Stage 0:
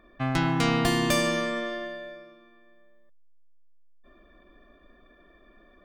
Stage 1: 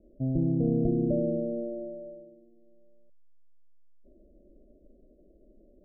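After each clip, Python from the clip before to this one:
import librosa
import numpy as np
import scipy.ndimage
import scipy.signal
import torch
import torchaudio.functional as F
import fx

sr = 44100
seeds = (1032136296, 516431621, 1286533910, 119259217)

y = scipy.signal.sosfilt(scipy.signal.butter(12, 610.0, 'lowpass', fs=sr, output='sos'), x)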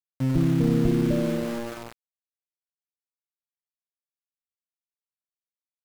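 y = scipy.ndimage.median_filter(x, 41, mode='constant')
y = fx.tilt_shelf(y, sr, db=6.0, hz=750.0)
y = np.where(np.abs(y) >= 10.0 ** (-30.5 / 20.0), y, 0.0)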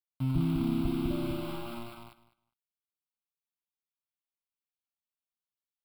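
y = fx.fixed_phaser(x, sr, hz=1800.0, stages=6)
y = fx.echo_feedback(y, sr, ms=203, feedback_pct=15, wet_db=-3)
y = y * librosa.db_to_amplitude(-4.0)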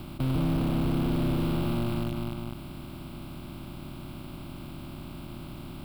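y = fx.bin_compress(x, sr, power=0.2)
y = fx.leveller(y, sr, passes=1)
y = np.clip(10.0 ** (19.5 / 20.0) * y, -1.0, 1.0) / 10.0 ** (19.5 / 20.0)
y = y * librosa.db_to_amplitude(-3.0)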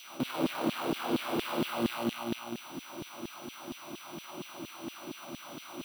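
y = fx.room_flutter(x, sr, wall_m=8.7, rt60_s=0.66)
y = y + 10.0 ** (-57.0 / 20.0) * np.sin(2.0 * np.pi * 5900.0 * np.arange(len(y)) / sr)
y = fx.filter_lfo_highpass(y, sr, shape='saw_down', hz=4.3, low_hz=240.0, high_hz=3300.0, q=1.8)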